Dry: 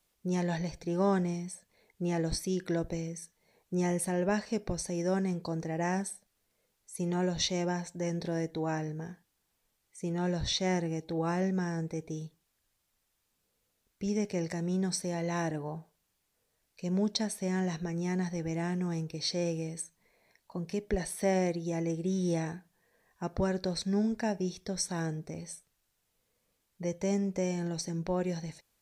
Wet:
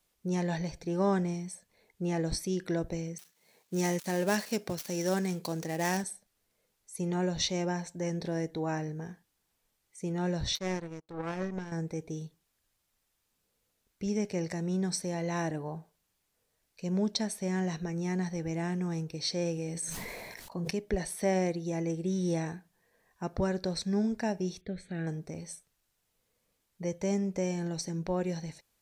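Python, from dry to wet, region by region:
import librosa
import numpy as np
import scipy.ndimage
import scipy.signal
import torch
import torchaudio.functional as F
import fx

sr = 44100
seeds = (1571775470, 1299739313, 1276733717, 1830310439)

y = fx.chain(x, sr, fx.dead_time(dead_ms=0.069),
    fx.highpass(hz=130.0, slope=12),
    fx.high_shelf(hz=2200.0, db=9.5), at=(3.18, 6.04))
y = fx.chain(y, sr, fx.high_shelf(hz=6600.0, db=-7.5),
    fx.power_curve(exponent=2.0), at=(10.55, 11.72))
y = fx.chain(y, sr, fx.doubler(ms=35.0, db=-12.5),
    fx.sustainer(db_per_s=21.0), at=(19.54, 20.71))
y = fx.chain(y, sr, fx.lowpass(hz=3700.0, slope=12),
    fx.fixed_phaser(hz=2400.0, stages=4), at=(24.61, 25.07))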